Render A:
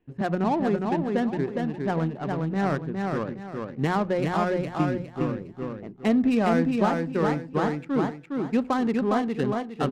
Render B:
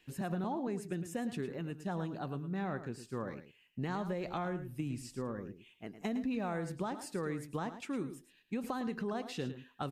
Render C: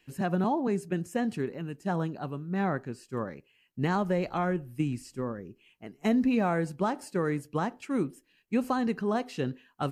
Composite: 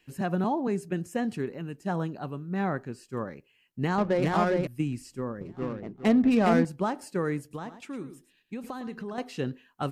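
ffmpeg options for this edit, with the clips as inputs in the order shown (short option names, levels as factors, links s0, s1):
-filter_complex "[0:a]asplit=2[s0][s1];[2:a]asplit=4[s2][s3][s4][s5];[s2]atrim=end=3.982[s6];[s0]atrim=start=3.978:end=4.672[s7];[s3]atrim=start=4.668:end=5.412[s8];[s1]atrim=start=5.408:end=6.652[s9];[s4]atrim=start=6.648:end=7.512[s10];[1:a]atrim=start=7.508:end=9.182[s11];[s5]atrim=start=9.178[s12];[s6][s7]acrossfade=d=0.004:c1=hsin:c2=hsin[s13];[s13][s8]acrossfade=d=0.004:c1=hsin:c2=hsin[s14];[s14][s9]acrossfade=d=0.004:c1=hsin:c2=hsin[s15];[s15][s10]acrossfade=d=0.004:c1=hsin:c2=hsin[s16];[s16][s11]acrossfade=d=0.004:c1=hsin:c2=hsin[s17];[s17][s12]acrossfade=d=0.004:c1=hsin:c2=hsin"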